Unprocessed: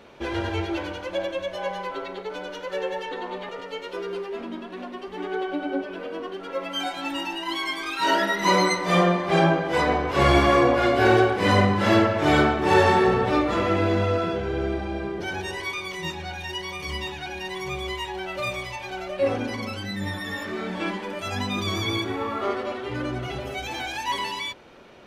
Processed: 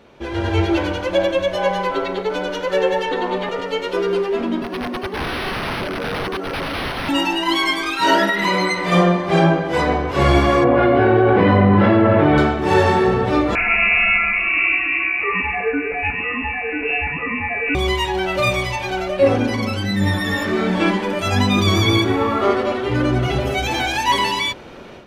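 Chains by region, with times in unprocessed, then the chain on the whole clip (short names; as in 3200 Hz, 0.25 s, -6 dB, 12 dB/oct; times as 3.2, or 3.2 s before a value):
4.62–7.09 HPF 190 Hz 24 dB/oct + wrapped overs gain 29 dB + decimation joined by straight lines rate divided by 6×
8.29–8.92 bell 2400 Hz +6.5 dB 1.2 oct + compressor 3:1, threshold -22 dBFS + notch 5900 Hz, Q 9.8
10.64–12.38 HPF 94 Hz + air absorption 480 m + fast leveller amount 100%
13.55–17.75 notch 1100 Hz, Q 7.4 + inverted band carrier 2700 Hz
whole clip: low shelf 330 Hz +5 dB; AGC; gain -1.5 dB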